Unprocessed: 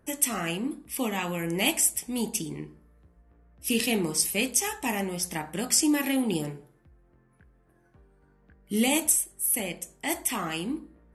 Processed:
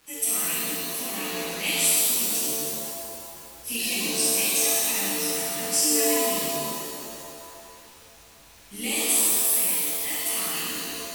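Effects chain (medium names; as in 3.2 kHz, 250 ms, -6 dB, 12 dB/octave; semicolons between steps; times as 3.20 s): amplifier tone stack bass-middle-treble 5-5-5; crackle 340 per s -46 dBFS; pitch-shifted reverb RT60 2.3 s, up +7 st, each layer -2 dB, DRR -9.5 dB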